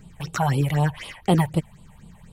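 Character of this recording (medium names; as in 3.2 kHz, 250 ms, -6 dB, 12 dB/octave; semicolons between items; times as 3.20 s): phasing stages 6, 4 Hz, lowest notch 310–1800 Hz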